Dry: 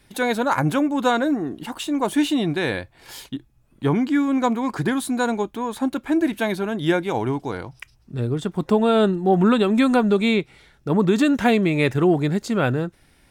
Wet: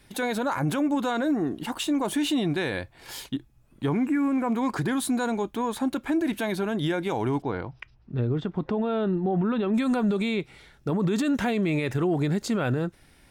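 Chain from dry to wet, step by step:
brickwall limiter −18 dBFS, peak gain reduction 10.5 dB
0:03.94–0:04.47: healed spectral selection 2,800–7,300 Hz after
0:07.42–0:09.74: high-frequency loss of the air 260 metres

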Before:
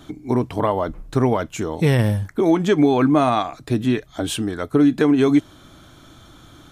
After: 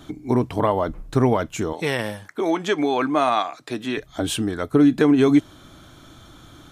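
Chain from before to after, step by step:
0:01.73–0:03.97: meter weighting curve A

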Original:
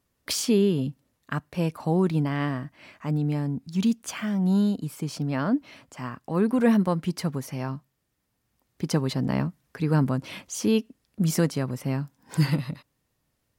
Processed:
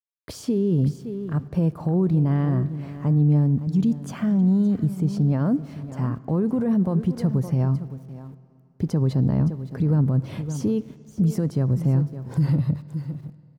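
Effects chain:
graphic EQ with 15 bands 100 Hz +6 dB, 250 Hz −4 dB, 2,500 Hz −4 dB
in parallel at +1 dB: downward compressor, threshold −34 dBFS, peak gain reduction 16 dB
on the sum: single-tap delay 564 ms −15.5 dB
brickwall limiter −19 dBFS, peak gain reduction 10 dB
centre clipping without the shift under −48 dBFS
tilt shelving filter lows +9.5 dB, about 790 Hz
on a send at −18 dB: convolution reverb RT60 2.8 s, pre-delay 47 ms
on the sum: level −2.5 dB

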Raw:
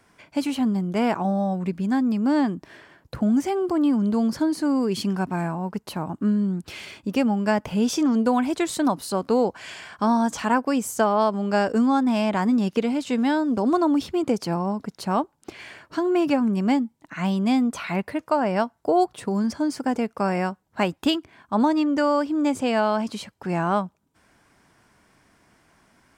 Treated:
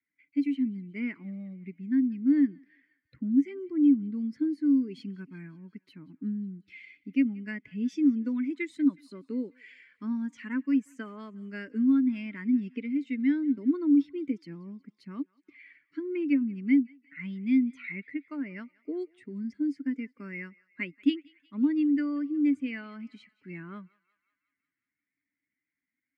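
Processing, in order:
spectral dynamics exaggerated over time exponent 1.5
pair of resonant band-passes 760 Hz, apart 2.9 octaves
feedback echo with a high-pass in the loop 182 ms, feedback 67%, high-pass 950 Hz, level −23 dB
level +3 dB

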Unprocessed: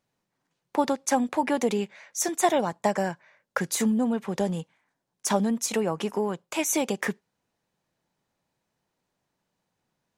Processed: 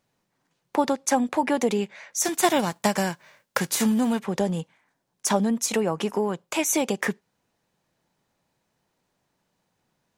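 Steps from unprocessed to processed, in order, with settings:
0:02.24–0:04.18: spectral envelope flattened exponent 0.6
in parallel at −2 dB: downward compressor, threshold −32 dBFS, peak gain reduction 15 dB

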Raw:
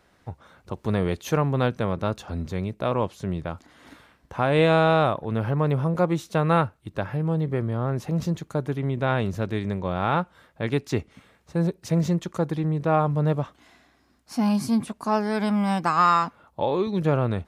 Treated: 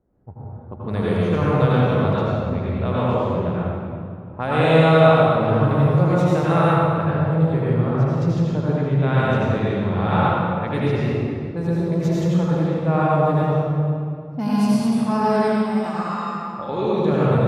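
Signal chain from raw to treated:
low-pass that shuts in the quiet parts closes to 400 Hz, open at −19.5 dBFS
0:15.40–0:16.69: downward compressor 6 to 1, threshold −28 dBFS, peak gain reduction 13 dB
convolution reverb RT60 2.4 s, pre-delay 75 ms, DRR −8 dB
level −3.5 dB

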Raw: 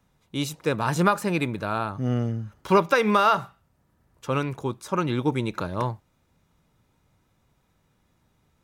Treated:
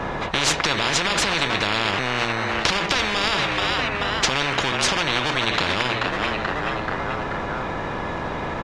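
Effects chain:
in parallel at −8 dB: decimation without filtering 22×
on the sum: head-to-tape spacing loss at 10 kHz 35 dB
hollow resonant body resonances 980/1,700 Hz, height 11 dB
on a send at −11 dB: convolution reverb, pre-delay 3 ms
on the sum: downward compressor 1.5 to 1, threshold −41 dBFS, peak gain reduction 10.5 dB
mains-hum notches 60/120/180/240/300/360/420 Hz
echo with shifted repeats 433 ms, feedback 44%, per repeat +100 Hz, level −18 dB
boost into a limiter +32 dB
every bin compressed towards the loudest bin 10 to 1
level −1 dB

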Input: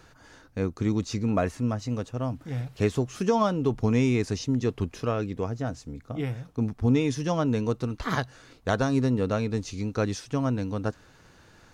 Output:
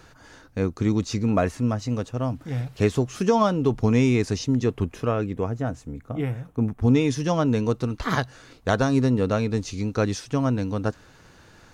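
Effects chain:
0:04.64–0:06.80: parametric band 4,800 Hz −6.5 dB → −14 dB 0.95 octaves
level +3.5 dB

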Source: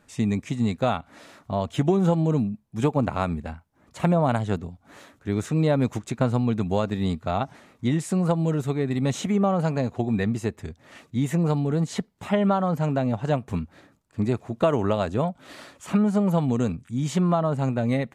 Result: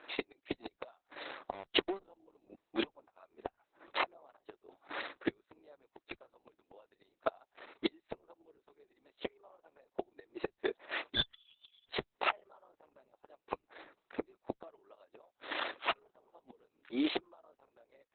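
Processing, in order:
transient designer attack +2 dB, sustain −8 dB
elliptic high-pass filter 320 Hz, stop band 50 dB
gate with flip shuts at −26 dBFS, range −42 dB
0:01.51–0:02.00: leveller curve on the samples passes 5
0:11.15–0:11.90: voice inversion scrambler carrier 3,800 Hz
level +8.5 dB
Opus 6 kbit/s 48,000 Hz

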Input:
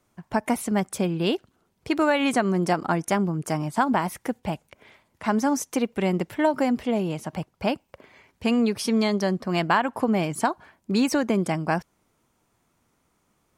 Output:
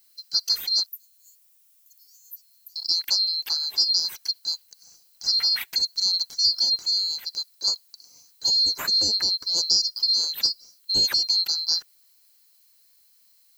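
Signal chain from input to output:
neighbouring bands swapped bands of 4,000 Hz
0:00.86–0:02.76: inverse Chebyshev high-pass filter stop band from 2,500 Hz, stop band 80 dB
background noise violet −60 dBFS

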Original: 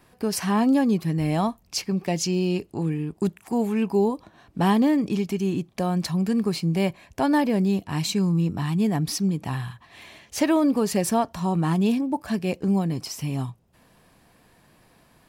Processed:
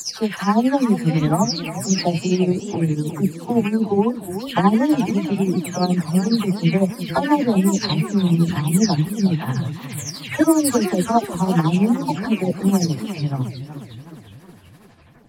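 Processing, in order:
every frequency bin delayed by itself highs early, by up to 399 ms
amplitude tremolo 12 Hz, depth 70%
feedback echo with a swinging delay time 365 ms, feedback 55%, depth 213 cents, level −11.5 dB
level +8.5 dB

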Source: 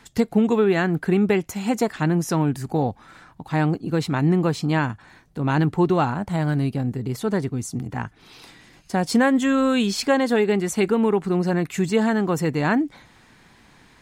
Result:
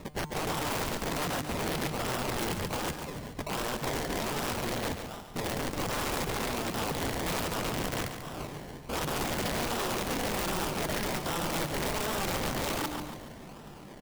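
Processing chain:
pitch glide at a constant tempo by −6 semitones ending unshifted
de-essing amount 65%
high-shelf EQ 4,200 Hz +4 dB
comb filter 5.1 ms, depth 35%
in parallel at +3 dB: brickwall limiter −17.5 dBFS, peak gain reduction 11.5 dB
on the sum: downward compressor 10 to 1, threshold −22 dBFS, peak gain reduction 13 dB
sample-and-hold swept by an LFO 28×, swing 60% 1.3 Hz
tuned comb filter 150 Hz, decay 1 s, harmonics all, mix 60%
wrap-around overflow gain 34 dB
repeating echo 141 ms, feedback 47%, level −8.5 dB
level +6.5 dB

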